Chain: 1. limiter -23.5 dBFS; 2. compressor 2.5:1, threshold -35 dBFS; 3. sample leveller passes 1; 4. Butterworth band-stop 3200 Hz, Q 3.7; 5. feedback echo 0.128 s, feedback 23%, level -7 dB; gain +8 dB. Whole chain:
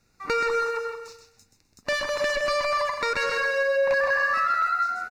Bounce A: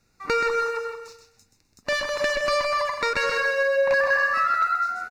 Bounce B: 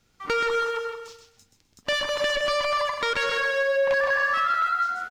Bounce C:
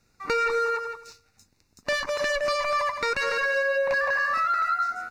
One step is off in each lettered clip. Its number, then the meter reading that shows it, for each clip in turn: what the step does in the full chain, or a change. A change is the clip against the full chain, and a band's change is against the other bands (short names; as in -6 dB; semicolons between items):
1, mean gain reduction 2.0 dB; 4, 4 kHz band +4.5 dB; 5, momentary loudness spread change -2 LU